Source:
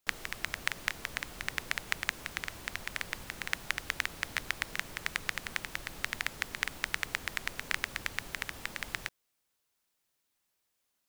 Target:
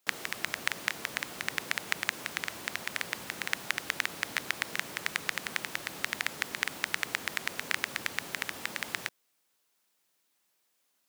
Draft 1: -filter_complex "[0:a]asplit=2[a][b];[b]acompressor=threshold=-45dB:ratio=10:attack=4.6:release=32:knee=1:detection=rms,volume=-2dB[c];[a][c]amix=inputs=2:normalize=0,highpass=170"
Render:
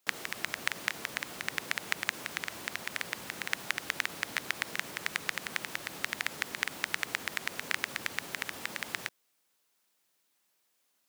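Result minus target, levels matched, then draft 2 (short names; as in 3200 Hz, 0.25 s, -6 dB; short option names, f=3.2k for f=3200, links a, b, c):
compressor: peak gain reduction +10 dB
-filter_complex "[0:a]asplit=2[a][b];[b]acompressor=threshold=-34dB:ratio=10:attack=4.6:release=32:knee=1:detection=rms,volume=-2dB[c];[a][c]amix=inputs=2:normalize=0,highpass=170"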